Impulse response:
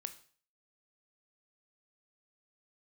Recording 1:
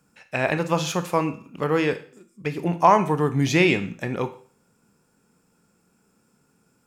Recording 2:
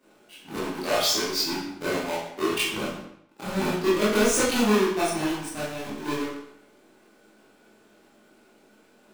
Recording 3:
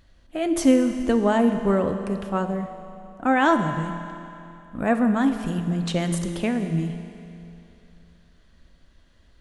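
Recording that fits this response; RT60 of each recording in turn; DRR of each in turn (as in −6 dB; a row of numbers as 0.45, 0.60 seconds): 1; 0.45, 0.75, 2.9 seconds; 9.0, −11.5, 6.5 decibels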